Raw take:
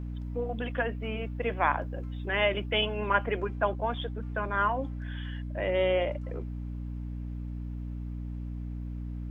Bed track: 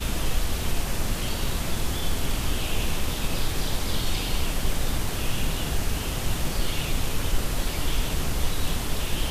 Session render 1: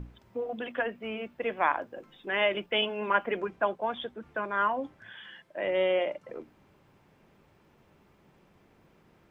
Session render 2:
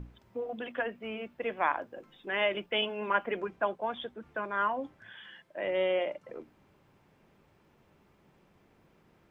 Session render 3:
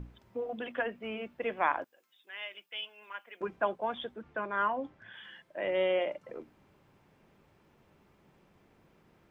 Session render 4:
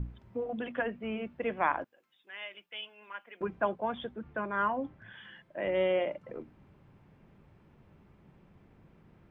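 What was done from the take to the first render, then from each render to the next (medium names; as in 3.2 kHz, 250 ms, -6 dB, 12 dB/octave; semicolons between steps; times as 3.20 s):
hum notches 60/120/180/240/300 Hz
trim -2.5 dB
1.84–3.41 s: differentiator; 4.22–5.14 s: distance through air 73 m
tone controls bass +9 dB, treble -10 dB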